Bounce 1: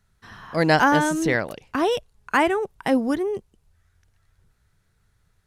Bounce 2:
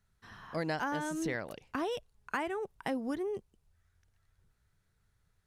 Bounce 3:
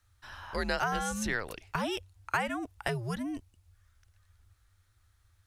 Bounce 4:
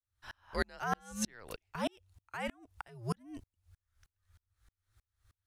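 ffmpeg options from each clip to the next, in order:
-af "acompressor=threshold=-23dB:ratio=4,volume=-8.5dB"
-af "equalizer=f=350:t=o:w=2.8:g=-8.5,afreqshift=-110,volume=8dB"
-af "aeval=exprs='val(0)*pow(10,-39*if(lt(mod(-3.2*n/s,1),2*abs(-3.2)/1000),1-mod(-3.2*n/s,1)/(2*abs(-3.2)/1000),(mod(-3.2*n/s,1)-2*abs(-3.2)/1000)/(1-2*abs(-3.2)/1000))/20)':c=same,volume=3.5dB"

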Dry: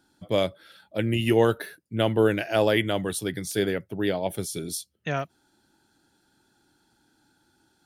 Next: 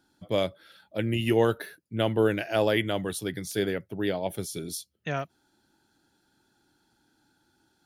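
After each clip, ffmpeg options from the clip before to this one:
-af "equalizer=f=8.4k:w=5:g=-4.5,volume=-2.5dB"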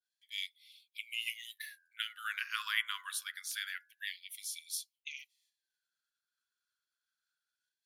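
-af "agate=range=-33dB:threshold=-58dB:ratio=3:detection=peak,bandreject=f=84.37:t=h:w=4,bandreject=f=168.74:t=h:w=4,bandreject=f=253.11:t=h:w=4,bandreject=f=337.48:t=h:w=4,bandreject=f=421.85:t=h:w=4,bandreject=f=506.22:t=h:w=4,bandreject=f=590.59:t=h:w=4,bandreject=f=674.96:t=h:w=4,bandreject=f=759.33:t=h:w=4,bandreject=f=843.7:t=h:w=4,bandreject=f=928.07:t=h:w=4,bandreject=f=1.01244k:t=h:w=4,bandreject=f=1.09681k:t=h:w=4,bandreject=f=1.18118k:t=h:w=4,bandreject=f=1.26555k:t=h:w=4,bandreject=f=1.34992k:t=h:w=4,bandreject=f=1.43429k:t=h:w=4,bandreject=f=1.51866k:t=h:w=4,bandreject=f=1.60303k:t=h:w=4,bandreject=f=1.6874k:t=h:w=4,afftfilt=real='re*gte(b*sr/1024,960*pow(2100/960,0.5+0.5*sin(2*PI*0.26*pts/sr)))':imag='im*gte(b*sr/1024,960*pow(2100/960,0.5+0.5*sin(2*PI*0.26*pts/sr)))':win_size=1024:overlap=0.75,volume=-2.5dB"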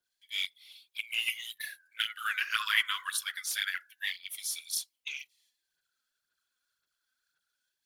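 -af "aphaser=in_gain=1:out_gain=1:delay=4:decay=0.55:speed=1.9:type=sinusoidal,volume=5dB"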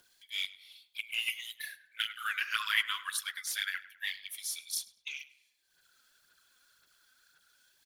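-filter_complex "[0:a]acompressor=mode=upward:threshold=-50dB:ratio=2.5,asplit=2[a][b];[b]adelay=102,lowpass=f=3k:p=1,volume=-15.5dB,asplit=2[c][d];[d]adelay=102,lowpass=f=3k:p=1,volume=0.47,asplit=2[e][f];[f]adelay=102,lowpass=f=3k:p=1,volume=0.47,asplit=2[g][h];[h]adelay=102,lowpass=f=3k:p=1,volume=0.47[i];[a][c][e][g][i]amix=inputs=5:normalize=0,volume=-2dB"

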